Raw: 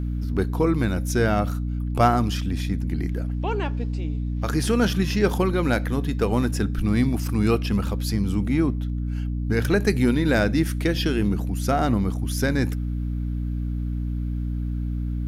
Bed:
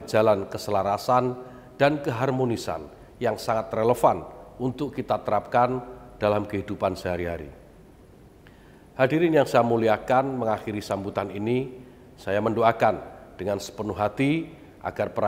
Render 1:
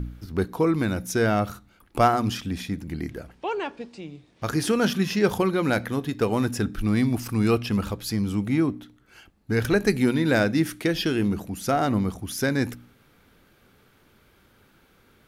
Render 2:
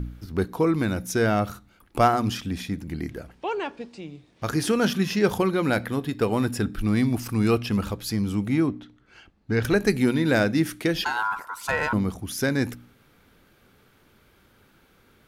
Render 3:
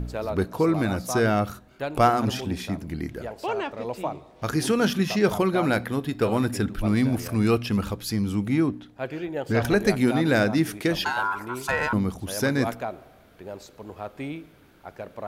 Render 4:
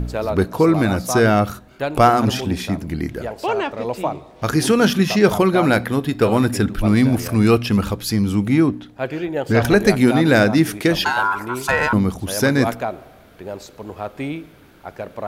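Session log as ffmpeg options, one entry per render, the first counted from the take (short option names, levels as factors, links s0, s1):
-af "bandreject=f=60:t=h:w=4,bandreject=f=120:t=h:w=4,bandreject=f=180:t=h:w=4,bandreject=f=240:t=h:w=4,bandreject=f=300:t=h:w=4"
-filter_complex "[0:a]asettb=1/sr,asplit=3[s0][s1][s2];[s0]atrim=end=5.654[s3];[s1]atrim=start=5.65:end=6.79,asetpts=PTS-STARTPTS,afade=t=in:d=0.004:c=qsin,afade=t=out:st=1.136:d=0.004:c=qsin,bandreject=f=6200:w=6.8[s4];[s2]atrim=start=6.786[s5];[s3][s4]acrossfade=d=0.004:c1=hsin:c2=qsin[s6];[s6][s5]acrossfade=d=0.004:c1=qsin:c2=hsin,asettb=1/sr,asplit=3[s7][s8][s9];[s7]atrim=end=8.694[s10];[s8]atrim=start=8.69:end=9.63,asetpts=PTS-STARTPTS,afade=t=in:d=0.004:c=qsin,afade=t=out:st=0.936:d=0.004:c=qsin,lowpass=5400[s11];[s9]atrim=start=9.626[s12];[s10][s11]acrossfade=d=0.004:c1=hsin:c2=qsin[s13];[s13][s12]acrossfade=d=0.004:c1=qsin:c2=hsin,asettb=1/sr,asplit=3[s14][s15][s16];[s14]atrim=end=11.044[s17];[s15]atrim=start=11.04:end=11.93,asetpts=PTS-STARTPTS,afade=t=in:d=0.004:c=qsin,afade=t=out:st=0.886:d=0.004:c=qsin,aeval=exprs='val(0)*sin(2*PI*1200*n/s)':c=same[s18];[s16]atrim=start=11.926[s19];[s17][s18]acrossfade=d=0.004:c1=hsin:c2=qsin[s20];[s20][s19]acrossfade=d=0.004:c1=qsin:c2=hsin"
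-filter_complex "[1:a]volume=0.282[s0];[0:a][s0]amix=inputs=2:normalize=0"
-af "volume=2.24,alimiter=limit=0.891:level=0:latency=1"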